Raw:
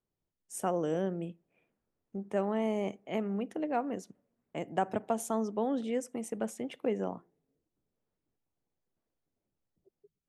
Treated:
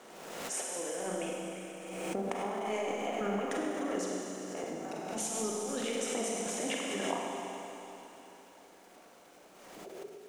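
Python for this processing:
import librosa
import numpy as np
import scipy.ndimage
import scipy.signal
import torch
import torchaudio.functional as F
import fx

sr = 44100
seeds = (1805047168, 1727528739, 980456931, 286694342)

y = fx.bin_compress(x, sr, power=0.6)
y = scipy.signal.sosfilt(scipy.signal.butter(2, 6500.0, 'lowpass', fs=sr, output='sos'), y)
y = fx.dereverb_blind(y, sr, rt60_s=1.7)
y = scipy.signal.sosfilt(scipy.signal.butter(2, 220.0, 'highpass', fs=sr, output='sos'), y)
y = fx.low_shelf(y, sr, hz=430.0, db=-10.0)
y = fx.over_compress(y, sr, threshold_db=-41.0, ratio=-0.5)
y = fx.dmg_crackle(y, sr, seeds[0], per_s=370.0, level_db=-57.0)
y = fx.rev_schroeder(y, sr, rt60_s=3.6, comb_ms=33, drr_db=-3.0)
y = fx.pre_swell(y, sr, db_per_s=35.0)
y = F.gain(torch.from_numpy(y), 2.5).numpy()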